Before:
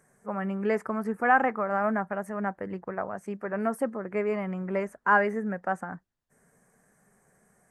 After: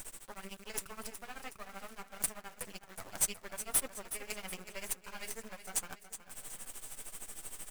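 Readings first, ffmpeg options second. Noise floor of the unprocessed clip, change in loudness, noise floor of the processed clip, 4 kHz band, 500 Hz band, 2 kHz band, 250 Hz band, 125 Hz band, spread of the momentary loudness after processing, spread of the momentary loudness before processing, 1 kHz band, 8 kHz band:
−69 dBFS, −11.0 dB, −59 dBFS, can't be measured, −20.5 dB, −17.0 dB, −22.0 dB, −18.0 dB, 15 LU, 12 LU, −21.0 dB, +21.0 dB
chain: -af "highpass=frequency=1400:poles=1,bandreject=frequency=6400:width=20,alimiter=limit=-21dB:level=0:latency=1:release=357,areverse,acompressor=threshold=-44dB:ratio=12,areverse,tremolo=f=13:d=0.9,aexciter=amount=13.9:drive=4.4:freq=2800,aeval=exprs='(tanh(15.8*val(0)+0.4)-tanh(0.4))/15.8':channel_layout=same,acrusher=bits=7:dc=4:mix=0:aa=0.000001,flanger=delay=4:depth=3.5:regen=-43:speed=1.8:shape=sinusoidal,aecho=1:1:369|738|1107|1476|1845:0.266|0.128|0.0613|0.0294|0.0141,volume=12.5dB"

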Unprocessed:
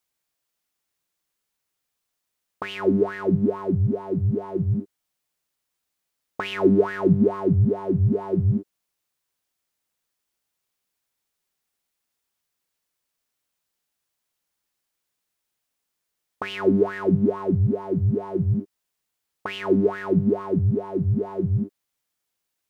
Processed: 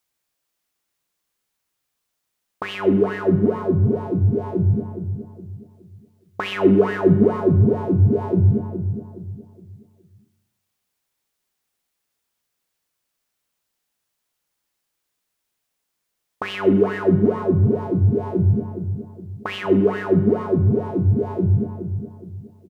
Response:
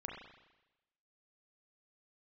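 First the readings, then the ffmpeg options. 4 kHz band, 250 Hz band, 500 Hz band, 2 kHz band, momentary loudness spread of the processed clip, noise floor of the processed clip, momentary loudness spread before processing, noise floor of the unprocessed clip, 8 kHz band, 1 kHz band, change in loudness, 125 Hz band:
+3.0 dB, +3.5 dB, +4.0 dB, +3.5 dB, 16 LU, −78 dBFS, 10 LU, −81 dBFS, can't be measured, +3.5 dB, +3.5 dB, +4.5 dB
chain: -filter_complex "[0:a]asplit=2[link_01][link_02];[link_02]adelay=417,lowpass=frequency=1200:poles=1,volume=-9dB,asplit=2[link_03][link_04];[link_04]adelay=417,lowpass=frequency=1200:poles=1,volume=0.36,asplit=2[link_05][link_06];[link_06]adelay=417,lowpass=frequency=1200:poles=1,volume=0.36,asplit=2[link_07][link_08];[link_08]adelay=417,lowpass=frequency=1200:poles=1,volume=0.36[link_09];[link_01][link_03][link_05][link_07][link_09]amix=inputs=5:normalize=0,asplit=2[link_10][link_11];[1:a]atrim=start_sample=2205[link_12];[link_11][link_12]afir=irnorm=-1:irlink=0,volume=-4dB[link_13];[link_10][link_13]amix=inputs=2:normalize=0"

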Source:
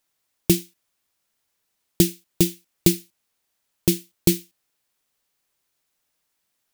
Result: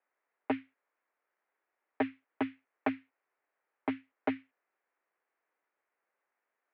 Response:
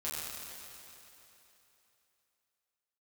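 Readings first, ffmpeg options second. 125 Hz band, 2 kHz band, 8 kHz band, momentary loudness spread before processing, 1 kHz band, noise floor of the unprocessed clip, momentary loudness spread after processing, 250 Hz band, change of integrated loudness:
−30.5 dB, −3.0 dB, below −40 dB, 5 LU, +8.0 dB, −76 dBFS, 5 LU, −12.5 dB, −15.0 dB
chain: -af "aeval=exprs='0.335*(abs(mod(val(0)/0.335+3,4)-2)-1)':channel_layout=same,highpass=frequency=440:width_type=q:width=0.5412,highpass=frequency=440:width_type=q:width=1.307,lowpass=frequency=2200:width_type=q:width=0.5176,lowpass=frequency=2200:width_type=q:width=0.7071,lowpass=frequency=2200:width_type=q:width=1.932,afreqshift=-74"

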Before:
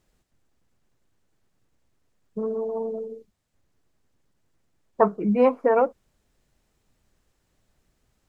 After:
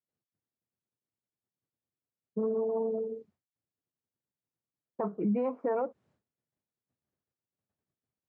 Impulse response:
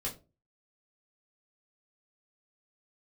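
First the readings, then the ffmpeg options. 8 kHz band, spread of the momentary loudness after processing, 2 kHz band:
can't be measured, 10 LU, −15.5 dB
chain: -af "lowpass=frequency=1200:poles=1,agate=range=-33dB:threshold=-55dB:ratio=3:detection=peak,highpass=frequency=96:width=0.5412,highpass=frequency=96:width=1.3066,acompressor=threshold=-27dB:ratio=2.5,alimiter=limit=-22.5dB:level=0:latency=1:release=10"

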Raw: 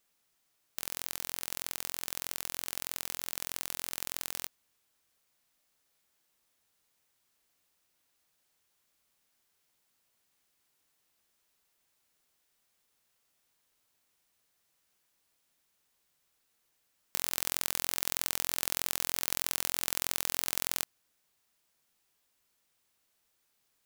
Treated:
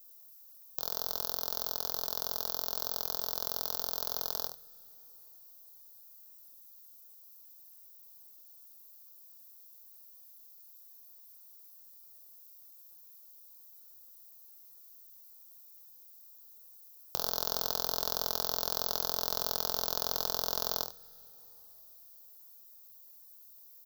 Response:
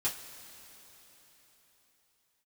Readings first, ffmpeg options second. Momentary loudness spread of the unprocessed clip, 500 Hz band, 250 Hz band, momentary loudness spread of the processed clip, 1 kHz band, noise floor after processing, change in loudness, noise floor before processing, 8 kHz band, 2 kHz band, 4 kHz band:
6 LU, +8.0 dB, −1.0 dB, 21 LU, +4.0 dB, −56 dBFS, +1.0 dB, −76 dBFS, −6.0 dB, −8.5 dB, +1.5 dB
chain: -filter_complex "[0:a]aexciter=amount=8.4:drive=5.5:freq=4700,firequalizer=gain_entry='entry(150,0);entry(330,-7);entry(480,8);entry(1400,-1);entry(2100,-23);entry(3400,0);entry(9100,-18);entry(13000,0)':delay=0.05:min_phase=1,acrossover=split=4600[link_01][link_02];[link_02]acompressor=threshold=-26dB:ratio=4:attack=1:release=60[link_03];[link_01][link_03]amix=inputs=2:normalize=0,aecho=1:1:51|74:0.316|0.266,asplit=2[link_04][link_05];[1:a]atrim=start_sample=2205,lowshelf=frequency=130:gain=10.5[link_06];[link_05][link_06]afir=irnorm=-1:irlink=0,volume=-18dB[link_07];[link_04][link_07]amix=inputs=2:normalize=0"

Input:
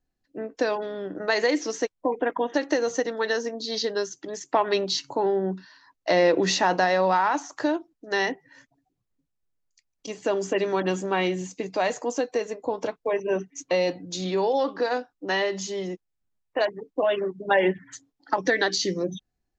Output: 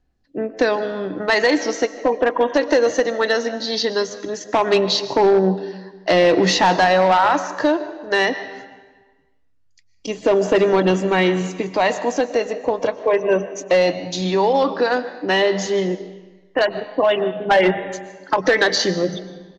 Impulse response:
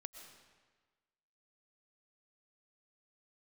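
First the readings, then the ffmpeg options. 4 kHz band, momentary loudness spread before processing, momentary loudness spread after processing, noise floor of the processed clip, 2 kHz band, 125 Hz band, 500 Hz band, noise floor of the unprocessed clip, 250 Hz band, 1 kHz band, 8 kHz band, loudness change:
+7.5 dB, 11 LU, 12 LU, −57 dBFS, +7.0 dB, +9.0 dB, +7.5 dB, −79 dBFS, +7.5 dB, +7.0 dB, can't be measured, +7.0 dB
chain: -filter_complex "[0:a]equalizer=frequency=65:width_type=o:width=0.39:gain=10,asplit=2[link_01][link_02];[1:a]atrim=start_sample=2205[link_03];[link_02][link_03]afir=irnorm=-1:irlink=0,volume=3dB[link_04];[link_01][link_04]amix=inputs=2:normalize=0,aphaser=in_gain=1:out_gain=1:delay=2:decay=0.25:speed=0.19:type=triangular,asplit=2[link_05][link_06];[link_06]asplit=2[link_07][link_08];[link_07]adelay=154,afreqshift=98,volume=-23dB[link_09];[link_08]adelay=308,afreqshift=196,volume=-33.5dB[link_10];[link_09][link_10]amix=inputs=2:normalize=0[link_11];[link_05][link_11]amix=inputs=2:normalize=0,asoftclip=type=hard:threshold=-12dB,lowpass=5500,volume=3dB"

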